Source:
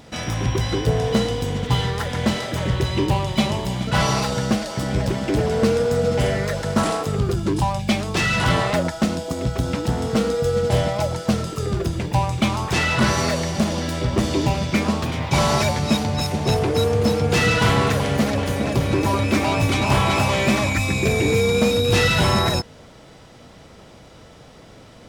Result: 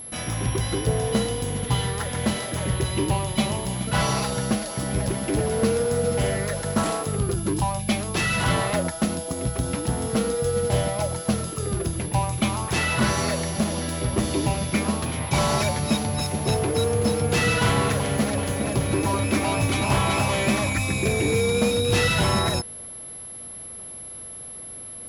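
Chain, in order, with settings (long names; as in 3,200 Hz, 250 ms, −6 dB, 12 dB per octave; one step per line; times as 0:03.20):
steady tone 11,000 Hz −32 dBFS
level −3.5 dB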